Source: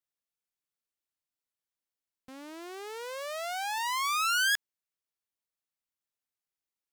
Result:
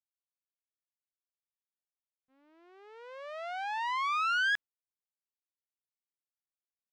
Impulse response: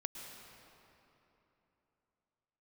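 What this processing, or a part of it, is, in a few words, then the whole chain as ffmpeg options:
hearing-loss simulation: -af "lowpass=2500,agate=range=0.0224:threshold=0.0224:ratio=3:detection=peak"

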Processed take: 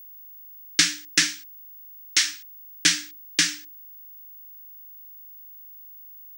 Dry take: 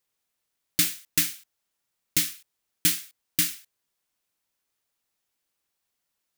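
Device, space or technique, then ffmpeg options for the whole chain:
old television with a line whistle: -filter_complex "[0:a]asettb=1/sr,asplit=3[s0][s1][s2];[s0]atrim=end=1.224[s3];[s1]atrim=start=1.22:end=2.29,asetpts=PTS-STARTPTS,afade=t=in:d=0.004:c=qsin,afade=t=out:st=1.066:d=0.004:c=qsin,highpass=590[s4];[s2]atrim=start=2.286[s5];[s3][s4]acrossfade=d=0.004:c1=hsin:c2=qsin[s6];[s6][s5]acrossfade=d=0.004:c1=qsin:c2=hsin,highpass=f=180:w=0.5412,highpass=f=180:w=1.3066,equalizer=f=200:t=q:w=4:g=-10,equalizer=f=470:t=q:w=4:g=-4,equalizer=f=1700:t=q:w=4:g=7,equalizer=f=5600:t=q:w=4:g=5,lowpass=f=7100:w=0.5412,lowpass=f=7100:w=1.3066,bandreject=f=60:t=h:w=6,bandreject=f=120:t=h:w=6,bandreject=f=180:t=h:w=6,bandreject=f=240:t=h:w=6,bandreject=f=300:t=h:w=6,aeval=exprs='val(0)+0.00355*sin(2*PI*15625*n/s)':c=same,volume=2.24"

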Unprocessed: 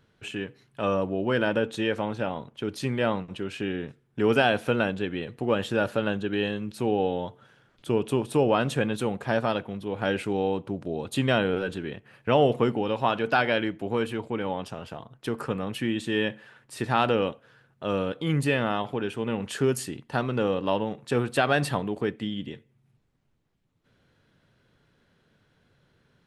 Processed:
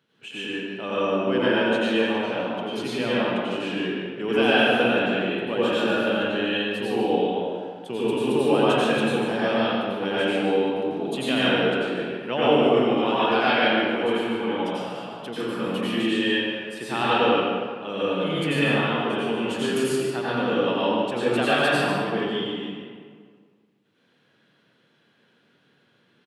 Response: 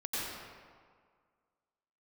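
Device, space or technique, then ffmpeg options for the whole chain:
PA in a hall: -filter_complex "[0:a]highpass=f=150:w=0.5412,highpass=f=150:w=1.3066,equalizer=f=3000:t=o:w=0.81:g=6.5,aecho=1:1:147:0.422[s0];[1:a]atrim=start_sample=2205[s1];[s0][s1]afir=irnorm=-1:irlink=0,volume=0.75"

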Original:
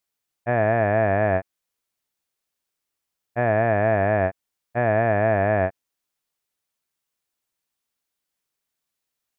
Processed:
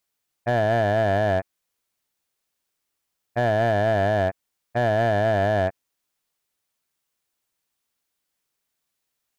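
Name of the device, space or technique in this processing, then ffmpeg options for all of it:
limiter into clipper: -af "alimiter=limit=0.224:level=0:latency=1:release=16,asoftclip=type=hard:threshold=0.133,volume=1.41"

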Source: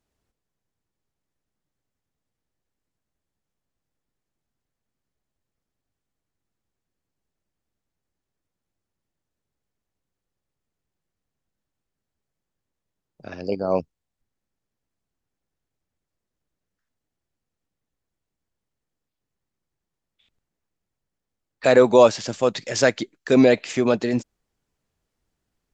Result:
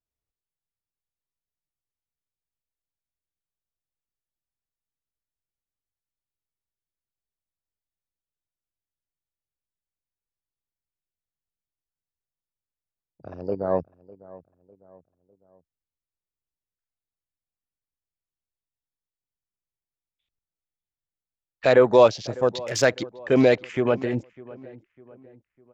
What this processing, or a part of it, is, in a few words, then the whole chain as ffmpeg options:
low shelf boost with a cut just above: -filter_complex "[0:a]lowshelf=f=100:g=6,equalizer=f=230:t=o:w=0.54:g=-5.5,afwtdn=0.0178,asplit=2[s0][s1];[s1]adelay=602,lowpass=f=1900:p=1,volume=0.1,asplit=2[s2][s3];[s3]adelay=602,lowpass=f=1900:p=1,volume=0.44,asplit=2[s4][s5];[s5]adelay=602,lowpass=f=1900:p=1,volume=0.44[s6];[s0][s2][s4][s6]amix=inputs=4:normalize=0,volume=0.841"

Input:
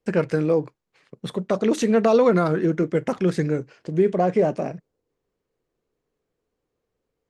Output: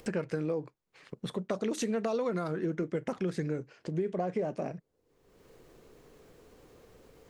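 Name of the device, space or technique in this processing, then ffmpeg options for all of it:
upward and downward compression: -filter_complex "[0:a]asettb=1/sr,asplit=3[s0][s1][s2];[s0]atrim=end=1.514[s3];[s1]atrim=start=1.51:end=2.51,asetpts=PTS-STARTPTS,afade=t=in:d=0.004:c=qsin,afade=t=out:st=0.996:d=0.004:c=qsin,highshelf=f=5100:g=6.5[s4];[s2]atrim=start=2.506[s5];[s3][s4]acrossfade=d=0.004:c1=hsin:c2=qsin[s6];[s6][s5]acrossfade=d=0.004:c1=qsin:c2=hsin,acompressor=mode=upward:threshold=0.0447:ratio=2.5,acompressor=threshold=0.0794:ratio=5,volume=0.473"

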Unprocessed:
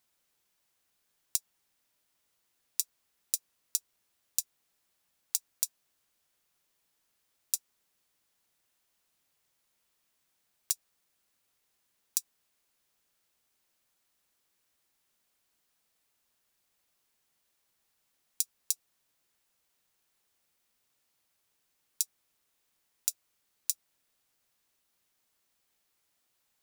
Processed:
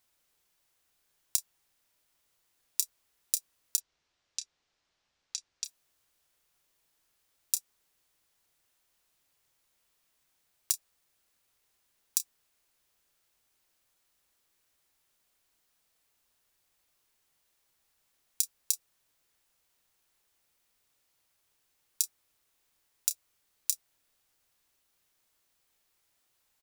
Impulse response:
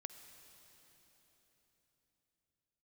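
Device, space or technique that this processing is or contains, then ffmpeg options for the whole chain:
low shelf boost with a cut just above: -filter_complex "[0:a]asplit=3[s0][s1][s2];[s0]afade=t=out:st=3.76:d=0.02[s3];[s1]lowpass=f=6000:w=0.5412,lowpass=f=6000:w=1.3066,afade=t=in:st=3.76:d=0.02,afade=t=out:st=5.64:d=0.02[s4];[s2]afade=t=in:st=5.64:d=0.02[s5];[s3][s4][s5]amix=inputs=3:normalize=0,lowshelf=f=69:g=5.5,equalizer=f=210:t=o:w=0.6:g=-4,asplit=2[s6][s7];[s7]adelay=30,volume=0.251[s8];[s6][s8]amix=inputs=2:normalize=0,volume=1.19"

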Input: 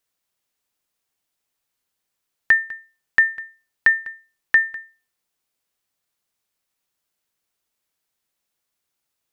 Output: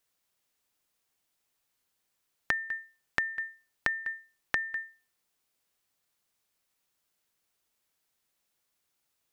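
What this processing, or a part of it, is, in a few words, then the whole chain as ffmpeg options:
serial compression, peaks first: -af "acompressor=threshold=0.0891:ratio=6,acompressor=threshold=0.0398:ratio=2.5"

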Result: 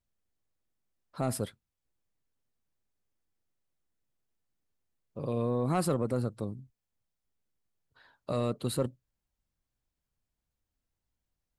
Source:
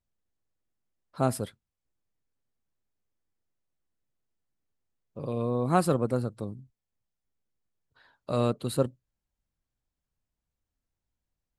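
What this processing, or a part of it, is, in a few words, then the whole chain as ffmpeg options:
soft clipper into limiter: -af "asoftclip=type=tanh:threshold=0.211,alimiter=limit=0.1:level=0:latency=1:release=35"

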